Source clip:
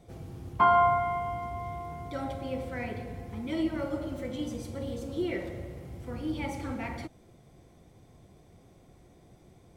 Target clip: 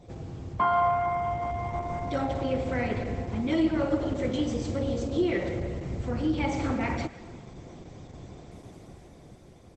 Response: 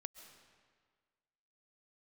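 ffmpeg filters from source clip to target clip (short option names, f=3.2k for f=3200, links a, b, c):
-filter_complex "[0:a]dynaudnorm=f=250:g=11:m=8dB,asplit=2[a][b];[b]adelay=110,highpass=300,lowpass=3.4k,asoftclip=type=hard:threshold=-20dB,volume=-20dB[c];[a][c]amix=inputs=2:normalize=0,acompressor=threshold=-40dB:ratio=1.5,asplit=2[d][e];[1:a]atrim=start_sample=2205[f];[e][f]afir=irnorm=-1:irlink=0,volume=3dB[g];[d][g]amix=inputs=2:normalize=0" -ar 48000 -c:a libopus -b:a 12k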